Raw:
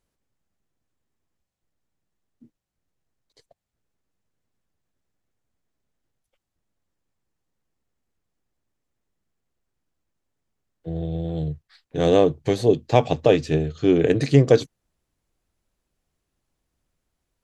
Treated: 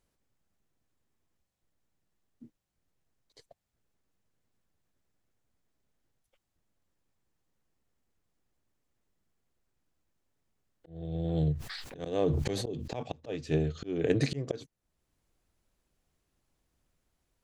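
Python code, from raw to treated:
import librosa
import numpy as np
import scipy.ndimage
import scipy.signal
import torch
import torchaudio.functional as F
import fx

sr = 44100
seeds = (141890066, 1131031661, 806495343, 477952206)

y = fx.auto_swell(x, sr, attack_ms=641.0)
y = fx.sustainer(y, sr, db_per_s=25.0, at=(11.53, 13.03))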